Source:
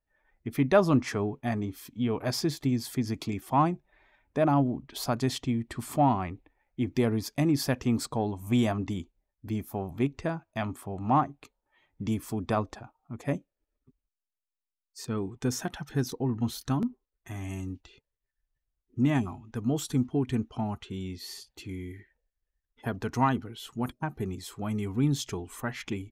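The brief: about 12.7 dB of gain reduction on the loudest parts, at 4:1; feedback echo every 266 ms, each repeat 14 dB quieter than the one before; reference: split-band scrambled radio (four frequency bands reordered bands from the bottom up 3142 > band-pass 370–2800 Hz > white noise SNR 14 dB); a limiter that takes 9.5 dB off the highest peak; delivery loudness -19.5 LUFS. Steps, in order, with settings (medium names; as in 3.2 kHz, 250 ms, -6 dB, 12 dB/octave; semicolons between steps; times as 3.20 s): compression 4:1, threshold -33 dBFS; peak limiter -31.5 dBFS; feedback delay 266 ms, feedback 20%, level -14 dB; four frequency bands reordered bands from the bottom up 3142; band-pass 370–2800 Hz; white noise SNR 14 dB; trim +20 dB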